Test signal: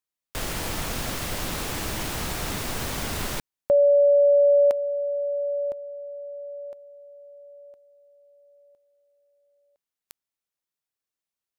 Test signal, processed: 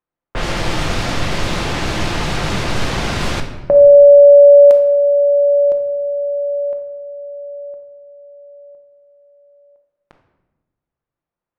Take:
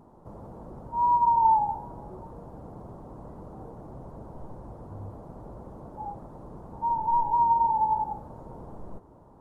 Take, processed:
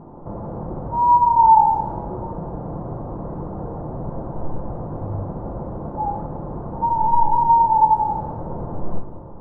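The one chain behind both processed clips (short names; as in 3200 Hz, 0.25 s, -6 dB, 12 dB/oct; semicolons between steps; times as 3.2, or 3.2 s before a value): low-pass opened by the level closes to 1200 Hz, open at -20.5 dBFS; in parallel at +3 dB: compressor, threshold -31 dBFS; on the sum: shoebox room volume 580 m³, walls mixed, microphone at 0.83 m; gain +4 dB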